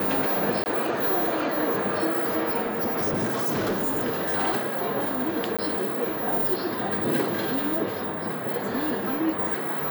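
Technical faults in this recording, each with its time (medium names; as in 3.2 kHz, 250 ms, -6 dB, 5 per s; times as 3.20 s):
0.64–0.66 s: dropout 19 ms
2.64–4.35 s: clipped -22 dBFS
5.57–5.59 s: dropout 16 ms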